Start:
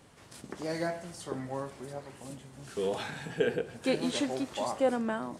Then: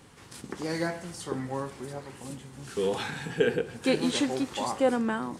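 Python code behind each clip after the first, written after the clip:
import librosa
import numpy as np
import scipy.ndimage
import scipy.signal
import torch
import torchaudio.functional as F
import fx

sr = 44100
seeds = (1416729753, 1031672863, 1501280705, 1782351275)

y = fx.peak_eq(x, sr, hz=630.0, db=-11.0, octaves=0.23)
y = y * librosa.db_to_amplitude(4.5)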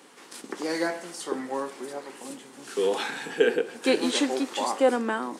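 y = scipy.signal.sosfilt(scipy.signal.butter(4, 260.0, 'highpass', fs=sr, output='sos'), x)
y = y * librosa.db_to_amplitude(3.5)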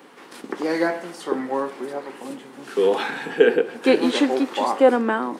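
y = fx.peak_eq(x, sr, hz=7800.0, db=-12.5, octaves=1.8)
y = y * librosa.db_to_amplitude(6.5)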